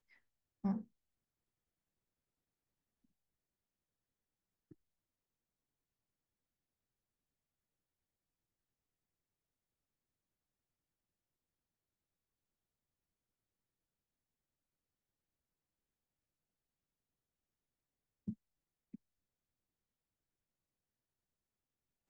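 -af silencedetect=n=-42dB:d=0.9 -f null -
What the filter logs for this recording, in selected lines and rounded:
silence_start: 0.81
silence_end: 18.28 | silence_duration: 17.47
silence_start: 18.95
silence_end: 22.09 | silence_duration: 3.14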